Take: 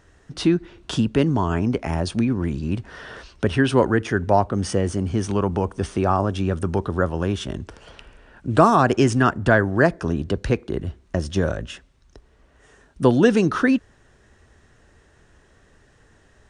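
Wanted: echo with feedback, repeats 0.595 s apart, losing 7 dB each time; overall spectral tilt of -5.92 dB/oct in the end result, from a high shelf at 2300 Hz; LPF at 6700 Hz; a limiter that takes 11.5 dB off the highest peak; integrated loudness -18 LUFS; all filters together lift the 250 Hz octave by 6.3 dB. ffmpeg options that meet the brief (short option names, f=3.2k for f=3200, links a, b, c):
-af "lowpass=6.7k,equalizer=f=250:t=o:g=7.5,highshelf=f=2.3k:g=7.5,alimiter=limit=-10dB:level=0:latency=1,aecho=1:1:595|1190|1785|2380|2975:0.447|0.201|0.0905|0.0407|0.0183,volume=3dB"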